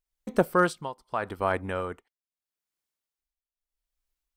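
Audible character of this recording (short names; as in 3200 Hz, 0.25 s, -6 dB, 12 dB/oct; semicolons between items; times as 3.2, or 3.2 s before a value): tremolo triangle 0.79 Hz, depth 95%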